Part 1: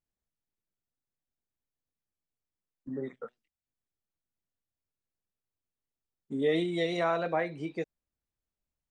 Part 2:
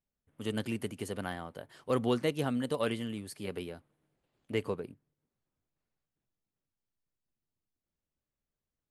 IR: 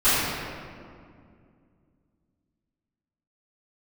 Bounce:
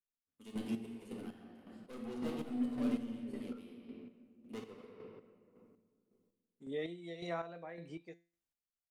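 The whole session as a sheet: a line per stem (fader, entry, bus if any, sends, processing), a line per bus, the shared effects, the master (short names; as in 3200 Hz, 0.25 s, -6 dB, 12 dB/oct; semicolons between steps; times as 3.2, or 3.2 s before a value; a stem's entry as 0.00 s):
-5.0 dB, 0.30 s, no send, resonator 170 Hz, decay 0.32 s, harmonics all, mix 60%
-2.5 dB, 0.00 s, send -16 dB, overloaded stage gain 33 dB; fifteen-band EQ 100 Hz -8 dB, 250 Hz +7 dB, 1600 Hz -5 dB; upward expander 2.5:1, over -43 dBFS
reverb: on, RT60 2.2 s, pre-delay 3 ms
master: chopper 1.8 Hz, depth 60%, duty 35%; mismatched tape noise reduction encoder only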